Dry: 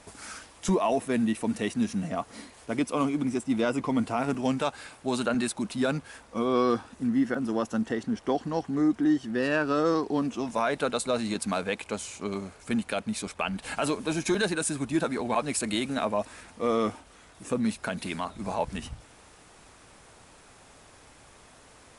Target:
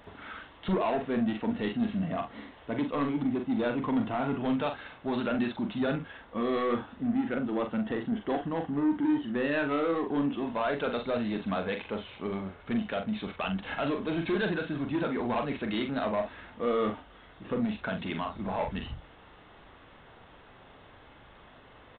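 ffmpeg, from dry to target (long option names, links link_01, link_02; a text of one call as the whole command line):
ffmpeg -i in.wav -af "bandreject=frequency=2400:width=11,aresample=8000,asoftclip=type=tanh:threshold=-24dB,aresample=44100,aecho=1:1:42|66:0.501|0.15" out.wav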